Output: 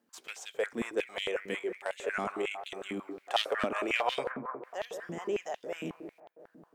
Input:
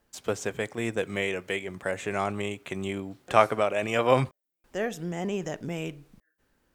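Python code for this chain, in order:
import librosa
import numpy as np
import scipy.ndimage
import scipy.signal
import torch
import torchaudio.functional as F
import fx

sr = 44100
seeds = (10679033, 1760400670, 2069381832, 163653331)

y = np.minimum(x, 2.0 * 10.0 ** (-19.5 / 20.0) - x)
y = fx.echo_bbd(y, sr, ms=182, stages=2048, feedback_pct=69, wet_db=-11.0)
y = fx.filter_held_highpass(y, sr, hz=11.0, low_hz=240.0, high_hz=3300.0)
y = y * 10.0 ** (-7.5 / 20.0)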